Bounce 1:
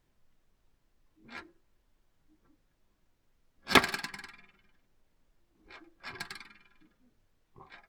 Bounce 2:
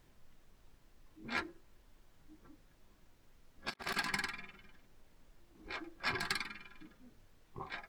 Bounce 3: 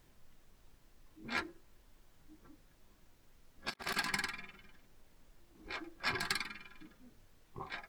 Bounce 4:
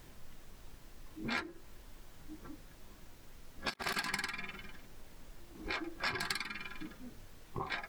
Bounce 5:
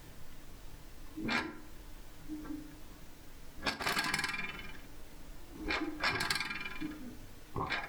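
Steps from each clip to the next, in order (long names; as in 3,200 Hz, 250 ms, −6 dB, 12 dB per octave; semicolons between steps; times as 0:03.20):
compressor whose output falls as the input rises −40 dBFS, ratio −0.5; level +1 dB
high-shelf EQ 5,500 Hz +4 dB
downward compressor 4 to 1, threshold −45 dBFS, peak gain reduction 13 dB; level +10 dB
feedback delay network reverb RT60 0.62 s, low-frequency decay 1.25×, high-frequency decay 0.6×, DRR 7 dB; level +2.5 dB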